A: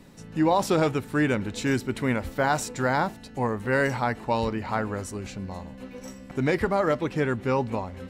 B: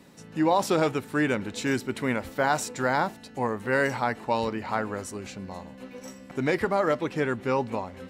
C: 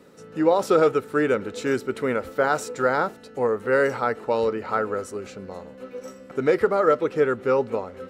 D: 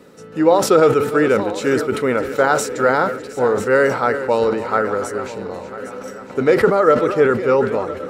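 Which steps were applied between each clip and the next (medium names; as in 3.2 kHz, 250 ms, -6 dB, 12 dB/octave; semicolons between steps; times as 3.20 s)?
high-pass 200 Hz 6 dB/octave
small resonant body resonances 460/1300 Hz, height 13 dB, ringing for 20 ms; trim -3 dB
backward echo that repeats 498 ms, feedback 63%, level -12.5 dB; decay stretcher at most 91 dB/s; trim +5.5 dB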